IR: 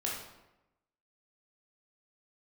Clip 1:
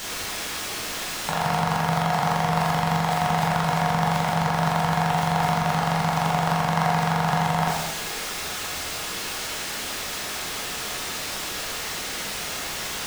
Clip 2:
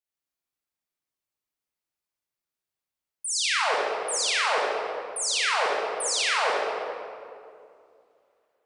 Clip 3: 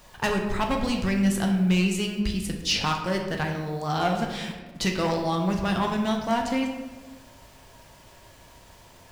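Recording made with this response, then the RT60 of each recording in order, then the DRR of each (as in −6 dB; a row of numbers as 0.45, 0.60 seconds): 1; 0.95, 2.4, 1.3 seconds; −4.0, −6.5, 2.0 decibels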